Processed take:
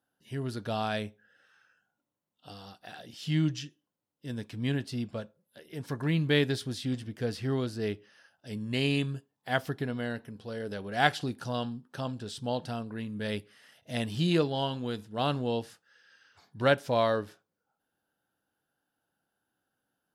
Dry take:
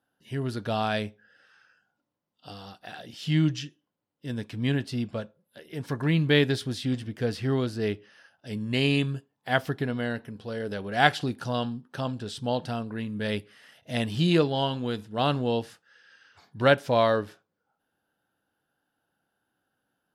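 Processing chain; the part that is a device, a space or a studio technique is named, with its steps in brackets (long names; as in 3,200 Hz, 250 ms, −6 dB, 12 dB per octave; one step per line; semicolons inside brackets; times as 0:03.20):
exciter from parts (in parallel at −7 dB: high-pass filter 3,600 Hz 12 dB per octave + soft clipping −30 dBFS, distortion −10 dB)
0:00.96–0:02.50: on the sum: notch filter 4,800 Hz, Q 5.2
level −4 dB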